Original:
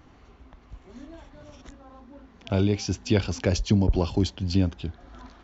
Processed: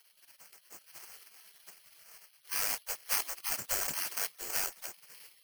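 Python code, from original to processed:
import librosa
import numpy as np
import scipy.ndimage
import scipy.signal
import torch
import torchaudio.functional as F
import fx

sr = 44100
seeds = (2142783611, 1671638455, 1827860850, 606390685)

y = fx.cvsd(x, sr, bps=16000)
y = fx.dynamic_eq(y, sr, hz=1500.0, q=3.7, threshold_db=-52.0, ratio=4.0, max_db=5)
y = fx.spec_gate(y, sr, threshold_db=-25, keep='weak')
y = (np.kron(scipy.signal.resample_poly(y, 1, 6), np.eye(6)[0]) * 6)[:len(y)]
y = F.gain(torch.from_numpy(y), 1.5).numpy()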